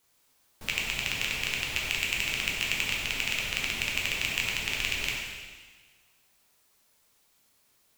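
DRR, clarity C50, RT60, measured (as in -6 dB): -3.0 dB, 1.0 dB, 1.4 s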